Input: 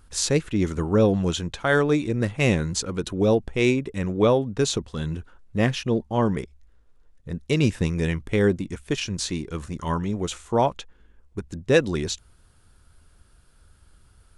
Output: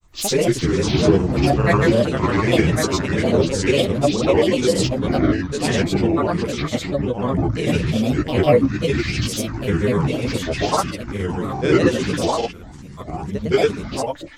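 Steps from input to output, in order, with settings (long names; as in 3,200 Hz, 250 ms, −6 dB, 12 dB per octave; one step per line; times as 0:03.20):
delay with pitch and tempo change per echo 297 ms, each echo −2 semitones, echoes 2
reverb whose tail is shaped and stops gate 120 ms rising, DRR −7 dB
granular cloud, grains 20 per second, pitch spread up and down by 7 semitones
level −3.5 dB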